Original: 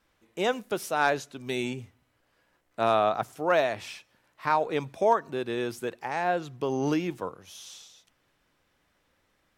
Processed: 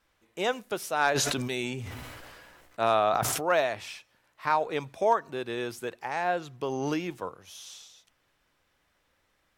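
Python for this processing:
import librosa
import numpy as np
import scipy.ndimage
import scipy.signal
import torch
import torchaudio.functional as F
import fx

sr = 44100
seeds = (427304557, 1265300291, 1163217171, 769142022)

y = fx.peak_eq(x, sr, hz=220.0, db=-4.5, octaves=2.2)
y = fx.sustainer(y, sr, db_per_s=25.0, at=(1.14, 3.51), fade=0.02)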